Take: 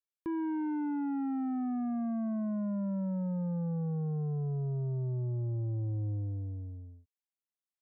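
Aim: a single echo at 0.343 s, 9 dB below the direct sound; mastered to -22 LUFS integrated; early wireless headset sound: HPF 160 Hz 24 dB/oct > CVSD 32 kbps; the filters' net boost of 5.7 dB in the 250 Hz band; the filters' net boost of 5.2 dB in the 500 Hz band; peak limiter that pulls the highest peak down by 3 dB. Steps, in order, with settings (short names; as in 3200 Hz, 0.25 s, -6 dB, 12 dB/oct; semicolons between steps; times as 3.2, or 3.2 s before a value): bell 250 Hz +6.5 dB; bell 500 Hz +4.5 dB; limiter -26 dBFS; HPF 160 Hz 24 dB/oct; echo 0.343 s -9 dB; CVSD 32 kbps; gain +10 dB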